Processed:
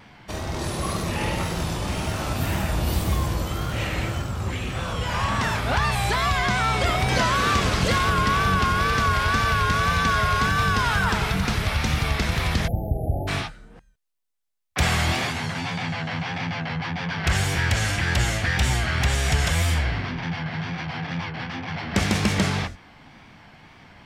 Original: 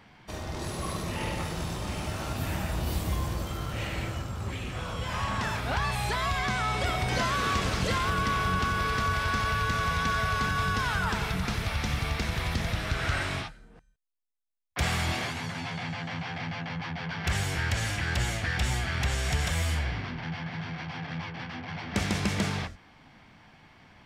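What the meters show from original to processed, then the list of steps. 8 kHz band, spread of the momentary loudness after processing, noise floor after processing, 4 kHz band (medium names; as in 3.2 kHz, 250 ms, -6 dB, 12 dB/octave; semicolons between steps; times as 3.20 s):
+6.5 dB, 8 LU, -50 dBFS, +6.5 dB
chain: spectral selection erased 12.67–13.28 s, 850–11000 Hz; wow and flutter 66 cents; trim +6.5 dB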